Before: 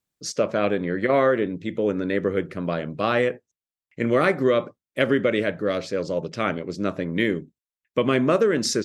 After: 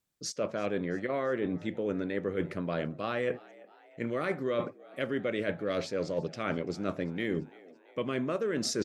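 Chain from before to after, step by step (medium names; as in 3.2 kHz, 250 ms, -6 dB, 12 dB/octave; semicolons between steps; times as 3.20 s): reverse; compression 10:1, threshold -28 dBFS, peak gain reduction 14 dB; reverse; frequency-shifting echo 337 ms, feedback 61%, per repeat +78 Hz, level -23 dB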